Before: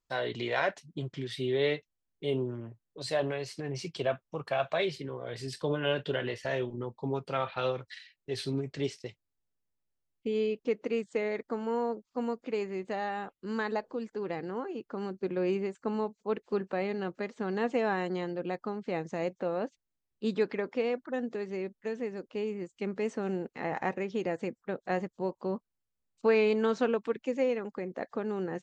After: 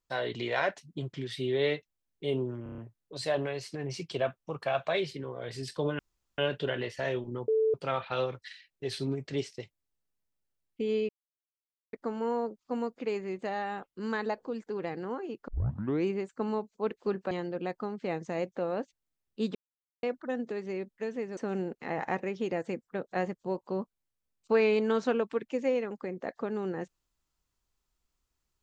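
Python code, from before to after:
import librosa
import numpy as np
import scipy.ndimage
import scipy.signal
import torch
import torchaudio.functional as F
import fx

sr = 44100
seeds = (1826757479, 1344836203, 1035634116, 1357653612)

y = fx.edit(x, sr, fx.stutter(start_s=2.63, slice_s=0.03, count=6),
    fx.insert_room_tone(at_s=5.84, length_s=0.39),
    fx.bleep(start_s=6.94, length_s=0.26, hz=440.0, db=-22.5),
    fx.silence(start_s=10.55, length_s=0.84),
    fx.tape_start(start_s=14.94, length_s=0.57),
    fx.cut(start_s=16.77, length_s=1.38),
    fx.silence(start_s=20.39, length_s=0.48),
    fx.cut(start_s=22.21, length_s=0.9), tone=tone)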